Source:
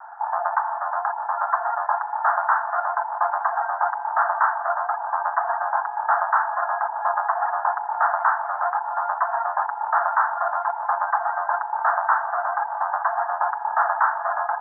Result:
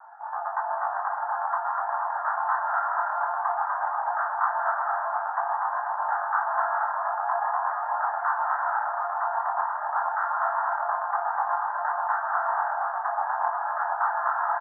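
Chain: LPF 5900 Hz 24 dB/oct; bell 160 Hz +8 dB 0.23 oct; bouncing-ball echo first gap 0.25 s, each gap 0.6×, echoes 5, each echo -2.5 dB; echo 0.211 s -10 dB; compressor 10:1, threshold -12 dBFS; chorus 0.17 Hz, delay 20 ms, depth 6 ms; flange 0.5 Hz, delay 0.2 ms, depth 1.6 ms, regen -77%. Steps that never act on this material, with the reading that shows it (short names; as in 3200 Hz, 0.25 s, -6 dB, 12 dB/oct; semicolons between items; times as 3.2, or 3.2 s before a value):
LPF 5900 Hz: input band ends at 1900 Hz; bell 160 Hz: input band starts at 570 Hz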